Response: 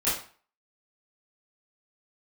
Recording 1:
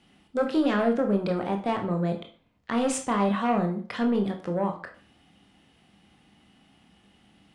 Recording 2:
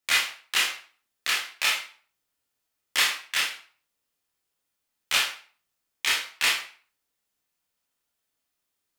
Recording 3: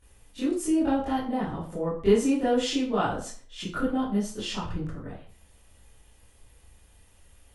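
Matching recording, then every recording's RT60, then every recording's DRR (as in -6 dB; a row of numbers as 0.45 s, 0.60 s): 3; 0.40 s, 0.40 s, 0.40 s; 3.5 dB, -3.0 dB, -12.5 dB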